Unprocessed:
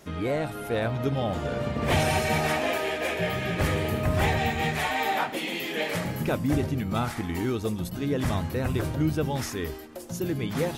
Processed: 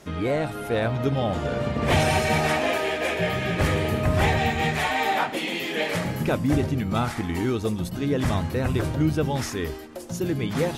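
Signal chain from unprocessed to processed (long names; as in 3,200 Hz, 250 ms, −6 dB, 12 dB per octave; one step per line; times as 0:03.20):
Bessel low-pass filter 11,000 Hz, order 2
level +3 dB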